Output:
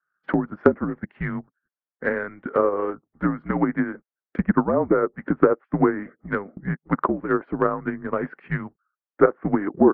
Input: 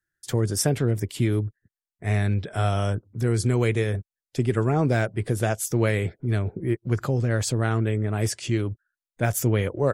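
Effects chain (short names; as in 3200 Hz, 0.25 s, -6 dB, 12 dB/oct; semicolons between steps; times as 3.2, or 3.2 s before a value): mistuned SSB -190 Hz 480–2000 Hz; transient shaper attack +10 dB, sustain -4 dB; treble ducked by the level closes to 1300 Hz, closed at -22 dBFS; gain +5.5 dB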